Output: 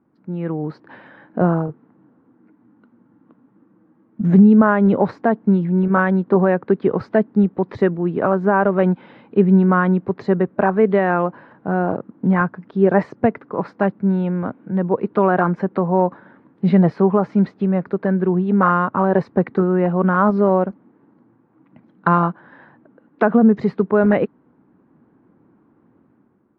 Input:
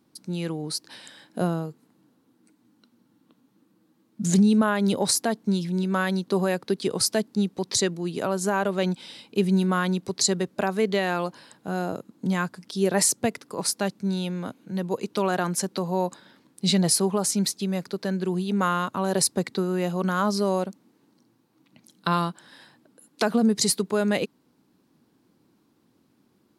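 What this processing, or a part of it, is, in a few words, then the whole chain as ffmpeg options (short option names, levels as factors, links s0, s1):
action camera in a waterproof case: -af "lowpass=f=1700:w=0.5412,lowpass=f=1700:w=1.3066,dynaudnorm=f=110:g=9:m=2.24,volume=1.26" -ar 44100 -c:a aac -b:a 48k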